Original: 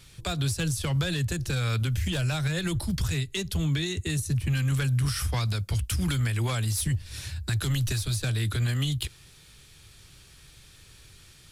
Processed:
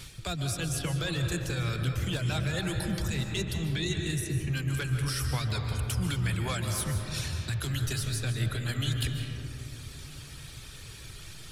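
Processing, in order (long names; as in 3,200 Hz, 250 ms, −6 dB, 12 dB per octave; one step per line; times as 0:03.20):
reverb reduction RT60 1.3 s
reversed playback
downward compressor 6 to 1, threshold −39 dBFS, peak gain reduction 14.5 dB
reversed playback
convolution reverb RT60 3.4 s, pre-delay 105 ms, DRR 2.5 dB
level +8.5 dB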